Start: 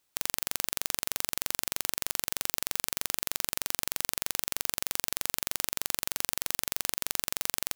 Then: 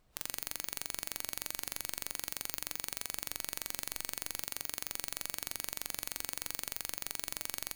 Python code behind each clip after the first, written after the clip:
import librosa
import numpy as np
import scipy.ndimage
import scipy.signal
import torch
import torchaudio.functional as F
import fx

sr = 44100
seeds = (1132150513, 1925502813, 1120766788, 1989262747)

y = fx.dmg_noise_colour(x, sr, seeds[0], colour='pink', level_db=-57.0)
y = fx.comb_fb(y, sr, f0_hz=150.0, decay_s=1.1, harmonics='all', damping=0.0, mix_pct=60)
y = fx.spectral_expand(y, sr, expansion=1.5)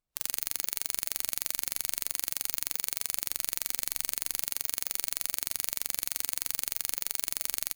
y = fx.high_shelf(x, sr, hz=3500.0, db=8.5)
y = y + 10.0 ** (-18.0 / 20.0) * np.pad(y, (int(75 * sr / 1000.0), 0))[:len(y)]
y = fx.upward_expand(y, sr, threshold_db=-46.0, expansion=2.5)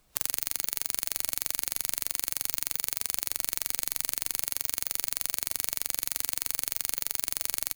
y = fx.band_squash(x, sr, depth_pct=70)
y = y * 10.0 ** (1.5 / 20.0)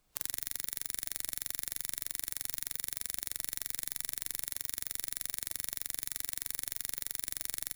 y = fx.room_flutter(x, sr, wall_m=7.3, rt60_s=0.43)
y = y * 10.0 ** (-8.0 / 20.0)